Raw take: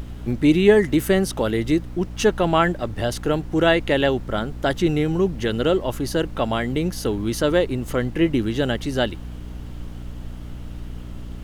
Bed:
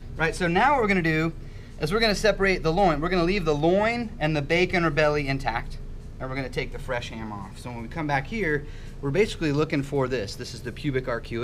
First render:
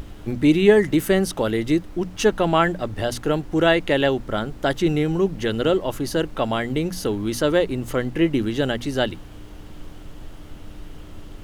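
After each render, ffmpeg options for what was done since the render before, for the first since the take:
-af "bandreject=f=60:t=h:w=6,bandreject=f=120:t=h:w=6,bandreject=f=180:t=h:w=6,bandreject=f=240:t=h:w=6"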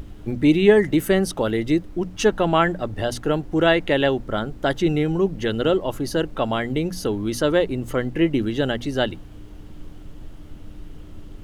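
-af "afftdn=nr=6:nf=-40"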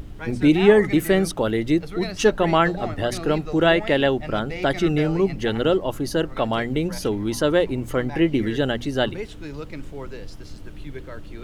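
-filter_complex "[1:a]volume=-11dB[a];[0:a][a]amix=inputs=2:normalize=0"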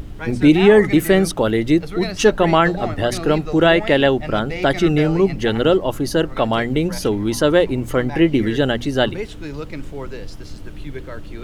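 -af "volume=4.5dB,alimiter=limit=-2dB:level=0:latency=1"

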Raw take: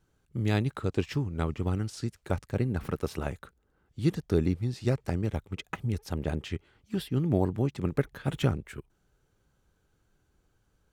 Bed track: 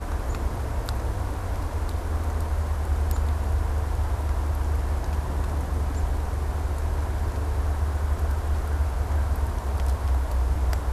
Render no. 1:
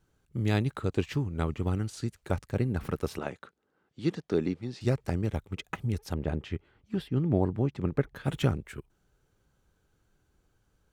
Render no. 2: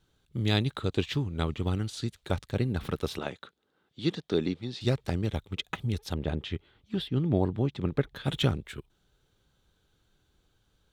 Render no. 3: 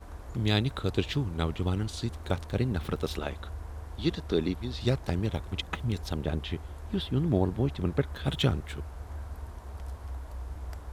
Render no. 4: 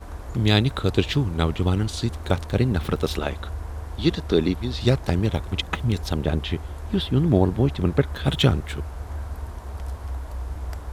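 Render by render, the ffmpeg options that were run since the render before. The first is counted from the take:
-filter_complex "[0:a]asettb=1/sr,asplit=3[a][b][c];[a]atrim=end=0.774[d];[b]atrim=start=0.77:end=2.19,asetpts=PTS-STARTPTS,afade=t=in:d=0.004:c=qsin,afade=t=out:st=1.416:d=0.004:c=qsin,bandreject=f=5.3k:w=11[e];[c]atrim=start=2.186[f];[d][e]acrossfade=d=0.004:c1=hsin:c2=qsin[g];[g][f]acrossfade=d=0.004:c1=qsin:c2=hsin,asettb=1/sr,asplit=3[h][i][j];[h]atrim=end=3.184[k];[i]atrim=start=3.18:end=4.81,asetpts=PTS-STARTPTS,afade=t=in:d=0.004:c=qsin,afade=t=out:st=1.626:d=0.004:c=qsin,highpass=200,lowpass=5.9k[l];[j]atrim=start=4.806[m];[k][l]acrossfade=d=0.004:c1=hsin:c2=qsin[n];[n][m]acrossfade=d=0.004:c1=qsin:c2=hsin,asettb=1/sr,asplit=3[o][p][q];[o]atrim=end=6.144[r];[p]atrim=start=6.14:end=8.16,asetpts=PTS-STARTPTS,afade=t=in:d=0.004:c=qsin,afade=t=out:st=2.016:d=0.004:c=qsin,lowpass=f=2.3k:p=1[s];[q]atrim=start=8.156[t];[r][s]acrossfade=d=0.004:c1=hsin:c2=qsin[u];[u][t]acrossfade=d=0.004:c1=qsin:c2=hsin"
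-af "equalizer=f=3.6k:t=o:w=0.58:g=12.5"
-filter_complex "[1:a]volume=-15dB[a];[0:a][a]amix=inputs=2:normalize=0"
-af "volume=7.5dB"

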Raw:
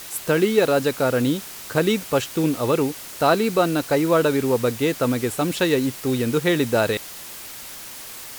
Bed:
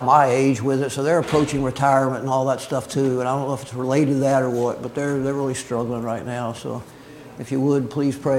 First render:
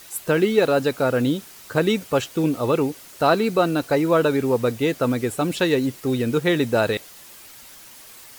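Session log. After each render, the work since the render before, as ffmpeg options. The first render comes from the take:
-af "afftdn=nr=8:nf=-37"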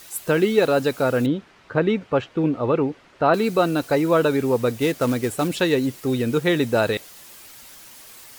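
-filter_complex "[0:a]asettb=1/sr,asplit=3[a][b][c];[a]atrim=end=1.264[d];[b]atrim=start=1.26:end=3.34,asetpts=PTS-STARTPTS,afade=t=in:d=0.004:c=qsin,afade=t=out:st=2.076:d=0.004:c=qsin,lowpass=2.3k[e];[c]atrim=start=3.336[f];[d][e]acrossfade=d=0.004:c1=hsin:c2=qsin[g];[g][f]acrossfade=d=0.004:c1=qsin:c2=hsin,asettb=1/sr,asplit=3[h][i][j];[h]atrim=end=4.804[k];[i]atrim=start=4.8:end=5.48,asetpts=PTS-STARTPTS,afade=t=in:d=0.004:c=qsin,afade=t=out:st=0.676:d=0.004:c=qsin,acrusher=bits=4:mode=log:mix=0:aa=0.000001[l];[j]atrim=start=5.476[m];[k][l]acrossfade=d=0.004:c1=hsin:c2=qsin[n];[n][m]acrossfade=d=0.004:c1=qsin:c2=hsin"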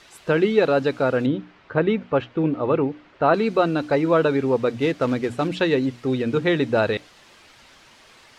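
-af "lowpass=3.9k,bandreject=f=60:t=h:w=6,bandreject=f=120:t=h:w=6,bandreject=f=180:t=h:w=6,bandreject=f=240:t=h:w=6,bandreject=f=300:t=h:w=6"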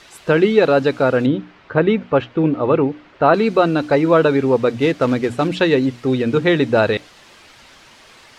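-af "volume=5dB,alimiter=limit=-2dB:level=0:latency=1"

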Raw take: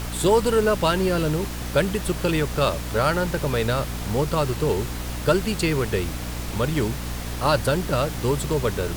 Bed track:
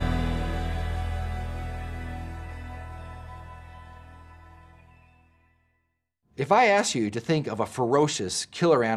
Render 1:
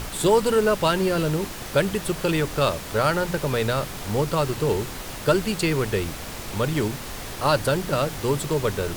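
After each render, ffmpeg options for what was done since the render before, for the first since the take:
-af "bandreject=f=60:t=h:w=4,bandreject=f=120:t=h:w=4,bandreject=f=180:t=h:w=4,bandreject=f=240:t=h:w=4,bandreject=f=300:t=h:w=4"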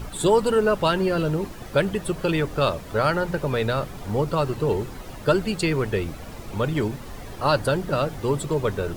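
-af "afftdn=nr=11:nf=-35"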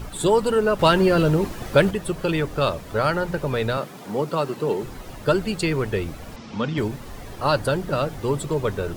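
-filter_complex "[0:a]asettb=1/sr,asplit=3[a][b][c];[a]atrim=end=0.794[d];[b]atrim=start=0.79:end=1.91,asetpts=PTS-STARTPTS,afade=t=in:d=0.004:c=qsin,afade=t=out:st=1.116:d=0.004:c=qsin,acontrast=28[e];[c]atrim=start=1.906[f];[d][e]acrossfade=d=0.004:c1=hsin:c2=qsin[g];[g][f]acrossfade=d=0.004:c1=qsin:c2=hsin,asettb=1/sr,asplit=3[h][i][j];[h]atrim=end=3.774[k];[i]atrim=start=3.77:end=4.83,asetpts=PTS-STARTPTS,afade=t=in:d=0.004:c=qsin,afade=t=out:st=1.056:d=0.004:c=qsin,highpass=f=160:w=0.5412,highpass=f=160:w=1.3066[l];[j]atrim=start=4.826[m];[k][l]acrossfade=d=0.004:c1=hsin:c2=qsin[n];[n][m]acrossfade=d=0.004:c1=qsin:c2=hsin,asettb=1/sr,asplit=3[o][p][q];[o]atrim=end=6.364[r];[p]atrim=start=6.36:end=6.78,asetpts=PTS-STARTPTS,afade=t=in:d=0.004:c=qsin,afade=t=out:st=0.416:d=0.004:c=qsin,highpass=100,equalizer=f=110:t=q:w=4:g=-8,equalizer=f=230:t=q:w=4:g=8,equalizer=f=370:t=q:w=4:g=-7,equalizer=f=620:t=q:w=4:g=-5,equalizer=f=3.1k:t=q:w=4:g=3,equalizer=f=5.3k:t=q:w=4:g=5,lowpass=f=6.2k:w=0.5412,lowpass=f=6.2k:w=1.3066[s];[q]atrim=start=6.776[t];[r][s]acrossfade=d=0.004:c1=hsin:c2=qsin[u];[u][t]acrossfade=d=0.004:c1=qsin:c2=hsin"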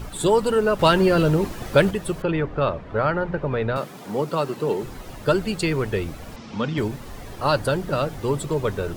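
-filter_complex "[0:a]asettb=1/sr,asplit=3[a][b][c];[a]atrim=end=2.224[d];[b]atrim=start=2.22:end=3.76,asetpts=PTS-STARTPTS,afade=t=in:d=0.004:c=qsin,afade=t=out:st=1.536:d=0.004:c=qsin,lowpass=2.2k[e];[c]atrim=start=3.756[f];[d][e]acrossfade=d=0.004:c1=hsin:c2=qsin[g];[g][f]acrossfade=d=0.004:c1=qsin:c2=hsin"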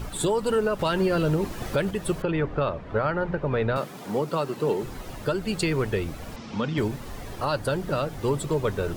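-af "alimiter=limit=-15dB:level=0:latency=1:release=282"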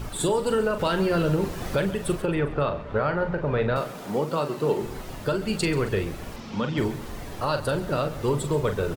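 -filter_complex "[0:a]asplit=2[a][b];[b]adelay=41,volume=-8.5dB[c];[a][c]amix=inputs=2:normalize=0,aecho=1:1:135|270|405|540:0.15|0.0733|0.0359|0.0176"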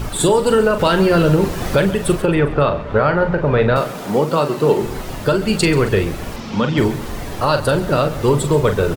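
-af "volume=9.5dB"

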